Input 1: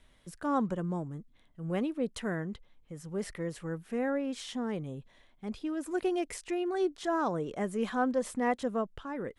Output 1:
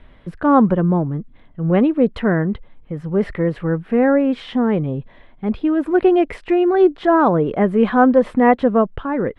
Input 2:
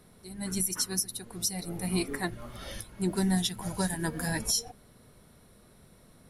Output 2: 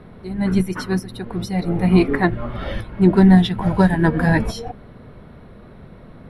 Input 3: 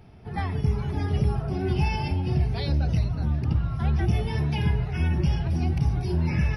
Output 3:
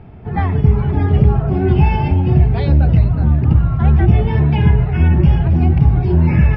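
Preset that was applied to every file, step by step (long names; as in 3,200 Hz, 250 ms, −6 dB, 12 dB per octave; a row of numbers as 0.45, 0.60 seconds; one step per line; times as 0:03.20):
high-frequency loss of the air 470 metres
normalise the peak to −2 dBFS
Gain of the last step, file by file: +18.0, +17.0, +12.5 decibels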